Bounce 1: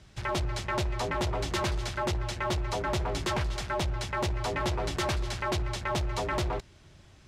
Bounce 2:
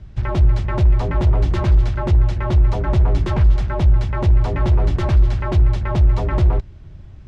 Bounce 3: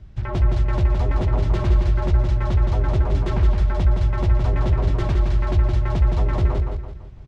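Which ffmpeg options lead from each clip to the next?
-af "aemphasis=mode=reproduction:type=riaa,volume=1.41"
-filter_complex "[0:a]flanger=delay=2.8:depth=6.8:regen=-79:speed=1.8:shape=sinusoidal,asplit=2[s0][s1];[s1]aecho=0:1:167|334|501|668|835:0.596|0.238|0.0953|0.0381|0.0152[s2];[s0][s2]amix=inputs=2:normalize=0"

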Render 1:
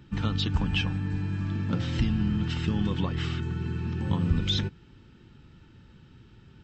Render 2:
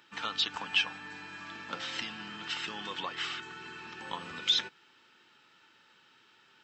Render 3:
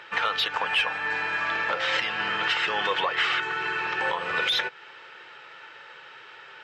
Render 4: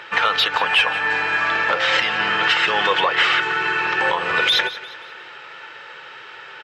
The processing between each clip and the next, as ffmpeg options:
-af "highpass=850,volume=1.41"
-filter_complex "[0:a]asplit=2[s0][s1];[s1]highpass=f=720:p=1,volume=4.47,asoftclip=type=tanh:threshold=0.188[s2];[s0][s2]amix=inputs=2:normalize=0,lowpass=f=1600:p=1,volume=0.501,alimiter=level_in=1.58:limit=0.0631:level=0:latency=1:release=275,volume=0.631,equalizer=f=125:t=o:w=1:g=7,equalizer=f=250:t=o:w=1:g=-12,equalizer=f=500:t=o:w=1:g=11,equalizer=f=2000:t=o:w=1:g=6,volume=2.82"
-af "aecho=1:1:176|352|528|704:0.168|0.0688|0.0282|0.0116,volume=2.37"

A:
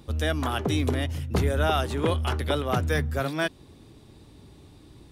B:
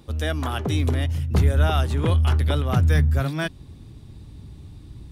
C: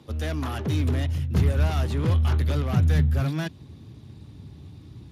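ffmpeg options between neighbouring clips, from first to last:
-af "asubboost=boost=4.5:cutoff=200"
-filter_complex "[0:a]acrossover=split=250[s0][s1];[s1]asoftclip=type=hard:threshold=0.0282[s2];[s0][s2]amix=inputs=2:normalize=0" -ar 32000 -c:a libspeex -b:a 36k

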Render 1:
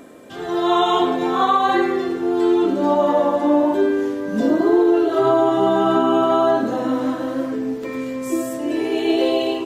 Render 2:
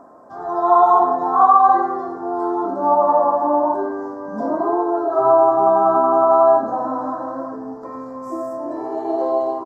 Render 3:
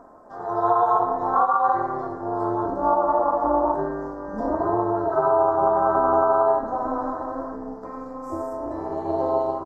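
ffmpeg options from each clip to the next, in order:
-af "firequalizer=gain_entry='entry(480,0);entry(690,14);entry(1100,14);entry(2600,-30);entry(5000,-5);entry(9000,-14)':delay=0.05:min_phase=1,volume=0.422"
-af "tremolo=f=240:d=0.71,alimiter=limit=0.376:level=0:latency=1:release=314"

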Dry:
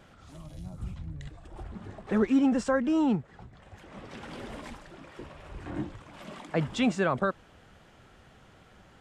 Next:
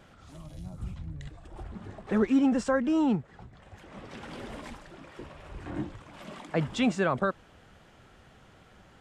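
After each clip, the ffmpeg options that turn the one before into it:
-af anull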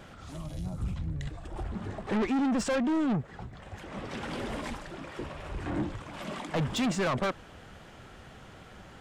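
-af "asoftclip=type=tanh:threshold=0.0266,volume=2.11"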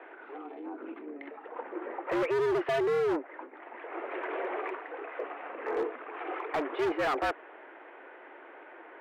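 -af "highpass=f=200:t=q:w=0.5412,highpass=f=200:t=q:w=1.307,lowpass=f=2300:t=q:w=0.5176,lowpass=f=2300:t=q:w=0.7071,lowpass=f=2300:t=q:w=1.932,afreqshift=140,volume=23.7,asoftclip=hard,volume=0.0422,volume=1.33"

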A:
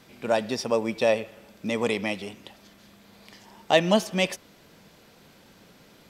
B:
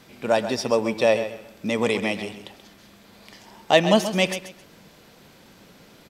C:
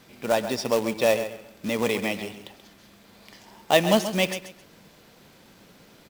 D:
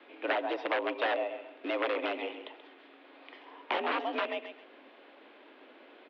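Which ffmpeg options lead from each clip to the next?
-af "aecho=1:1:132|264|396:0.282|0.0676|0.0162,volume=1.41"
-af "acrusher=bits=3:mode=log:mix=0:aa=0.000001,volume=0.75"
-filter_complex "[0:a]aeval=exprs='(mod(5.96*val(0)+1,2)-1)/5.96':c=same,acrossover=split=500|1200[s0][s1][s2];[s0]acompressor=threshold=0.02:ratio=4[s3];[s1]acompressor=threshold=0.0251:ratio=4[s4];[s2]acompressor=threshold=0.0251:ratio=4[s5];[s3][s4][s5]amix=inputs=3:normalize=0,highpass=f=220:t=q:w=0.5412,highpass=f=220:t=q:w=1.307,lowpass=f=3200:t=q:w=0.5176,lowpass=f=3200:t=q:w=0.7071,lowpass=f=3200:t=q:w=1.932,afreqshift=74"

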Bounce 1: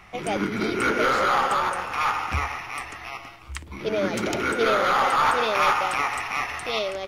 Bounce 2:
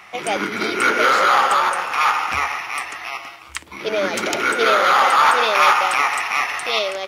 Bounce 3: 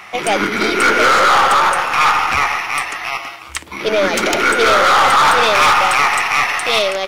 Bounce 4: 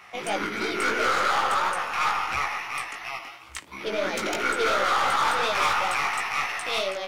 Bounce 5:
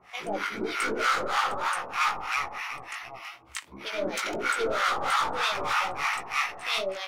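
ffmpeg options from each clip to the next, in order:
-af "highpass=f=700:p=1,volume=2.51"
-af "aeval=exprs='(tanh(3.16*val(0)+0.5)-tanh(0.5))/3.16':c=same,aeval=exprs='0.473*sin(PI/2*1.78*val(0)/0.473)':c=same"
-af "flanger=delay=15.5:depth=4.3:speed=2.9,volume=0.355"
-filter_complex "[0:a]acrossover=split=790[s0][s1];[s0]aeval=exprs='val(0)*(1-1/2+1/2*cos(2*PI*3.2*n/s))':c=same[s2];[s1]aeval=exprs='val(0)*(1-1/2-1/2*cos(2*PI*3.2*n/s))':c=same[s3];[s2][s3]amix=inputs=2:normalize=0,volume=1.19"

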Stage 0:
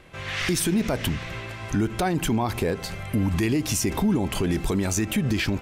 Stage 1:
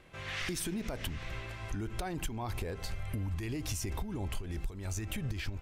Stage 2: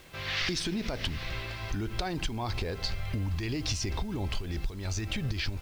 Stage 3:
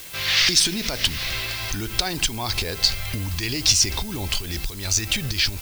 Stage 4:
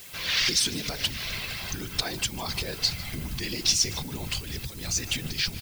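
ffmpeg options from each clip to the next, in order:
-af "asubboost=boost=8.5:cutoff=70,acompressor=threshold=0.0631:ratio=12,volume=0.398"
-af "lowpass=f=4700:t=q:w=2.6,acrusher=bits=9:mix=0:aa=0.000001,volume=1.58"
-af "crystalizer=i=6.5:c=0,volume=1.41"
-af "afftfilt=real='hypot(re,im)*cos(2*PI*random(0))':imag='hypot(re,im)*sin(2*PI*random(1))':win_size=512:overlap=0.75,aecho=1:1:151:0.119"

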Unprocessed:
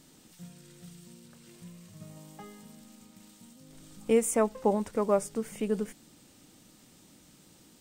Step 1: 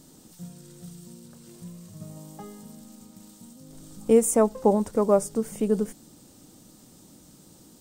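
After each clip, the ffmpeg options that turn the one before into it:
-af "equalizer=f=2300:w=0.9:g=-10.5,volume=2.11"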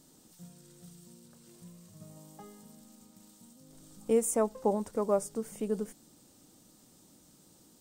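-af "lowshelf=f=320:g=-4.5,volume=0.473"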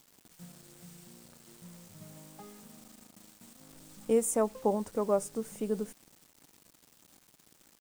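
-af "acrusher=bits=8:mix=0:aa=0.000001"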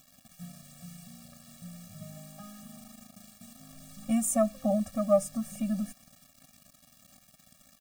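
-af "afftfilt=real='re*eq(mod(floor(b*sr/1024/270),2),0)':imag='im*eq(mod(floor(b*sr/1024/270),2),0)':win_size=1024:overlap=0.75,volume=2"

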